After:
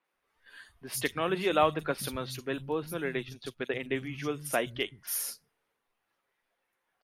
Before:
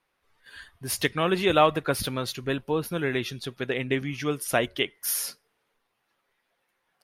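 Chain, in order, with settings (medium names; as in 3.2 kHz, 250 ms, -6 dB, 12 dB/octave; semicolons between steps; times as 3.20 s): 3.04–3.86 s: transient shaper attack +2 dB, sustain -11 dB; three bands offset in time mids, highs, lows 40/130 ms, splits 160/4200 Hz; trim -5 dB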